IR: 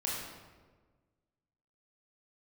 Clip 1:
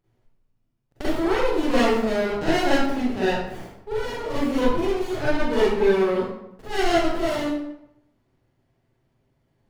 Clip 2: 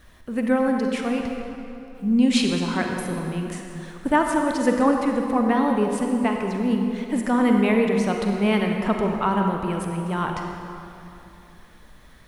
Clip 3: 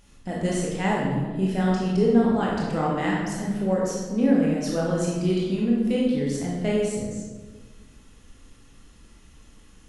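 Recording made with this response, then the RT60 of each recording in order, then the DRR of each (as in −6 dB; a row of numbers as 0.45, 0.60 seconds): 3; 0.80, 2.9, 1.4 seconds; −10.5, 2.5, −5.0 decibels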